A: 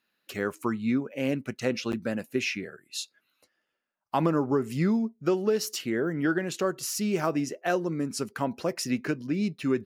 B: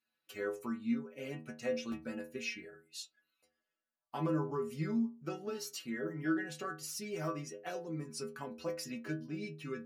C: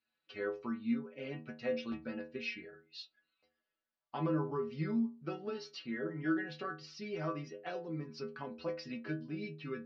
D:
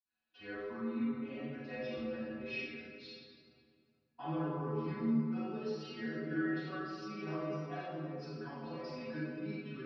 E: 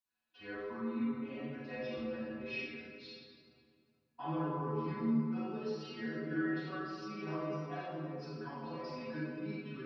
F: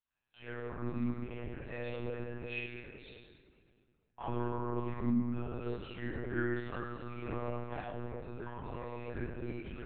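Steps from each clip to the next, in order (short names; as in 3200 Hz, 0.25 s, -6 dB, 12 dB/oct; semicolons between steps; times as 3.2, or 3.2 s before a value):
metallic resonator 75 Hz, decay 0.48 s, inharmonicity 0.008
steep low-pass 4900 Hz 48 dB/oct
reverb RT60 2.3 s, pre-delay 46 ms; gain +8 dB
bell 990 Hz +5.5 dB 0.2 oct
monotone LPC vocoder at 8 kHz 120 Hz; gain +1 dB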